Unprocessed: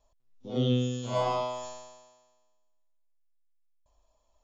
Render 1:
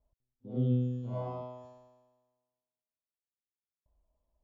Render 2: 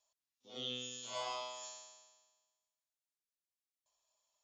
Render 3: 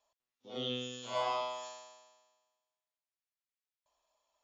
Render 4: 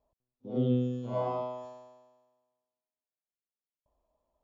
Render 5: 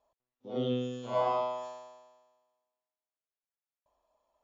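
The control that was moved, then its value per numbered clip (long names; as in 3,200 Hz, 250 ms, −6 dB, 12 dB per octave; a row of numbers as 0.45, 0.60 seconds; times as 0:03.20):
resonant band-pass, frequency: 100, 6,600, 2,500, 270, 810 Hertz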